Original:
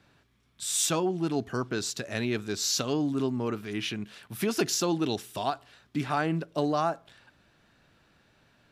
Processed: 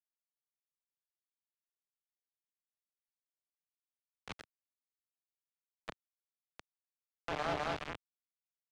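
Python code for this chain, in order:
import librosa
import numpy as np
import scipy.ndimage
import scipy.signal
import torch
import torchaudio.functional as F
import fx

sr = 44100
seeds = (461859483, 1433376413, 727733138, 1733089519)

y = fx.cycle_switch(x, sr, every=2, mode='muted')
y = fx.echo_feedback(y, sr, ms=208, feedback_pct=49, wet_db=-4.5)
y = fx.gate_flip(y, sr, shuts_db=-27.0, range_db=-35)
y = scipy.signal.sosfilt(scipy.signal.butter(2, 45.0, 'highpass', fs=sr, output='sos'), y)
y = fx.auto_swell(y, sr, attack_ms=467.0)
y = fx.notch(y, sr, hz=470.0, q=12.0)
y = fx.doubler(y, sr, ms=27.0, db=-6.0)
y = fx.quant_dither(y, sr, seeds[0], bits=8, dither='none')
y = scipy.signal.sosfilt(scipy.signal.butter(2, 3200.0, 'lowpass', fs=sr, output='sos'), y)
y = fx.band_squash(y, sr, depth_pct=40)
y = y * librosa.db_to_amplitude(16.5)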